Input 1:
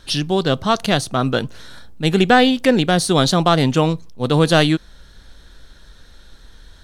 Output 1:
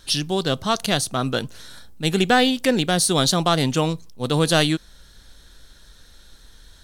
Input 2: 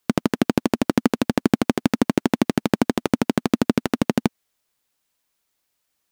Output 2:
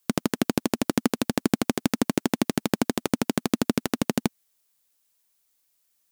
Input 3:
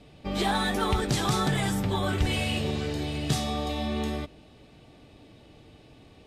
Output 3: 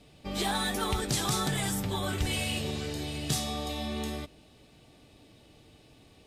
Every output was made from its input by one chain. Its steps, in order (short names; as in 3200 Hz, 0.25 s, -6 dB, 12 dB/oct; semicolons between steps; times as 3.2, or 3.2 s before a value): high shelf 4900 Hz +11.5 dB; gain -5 dB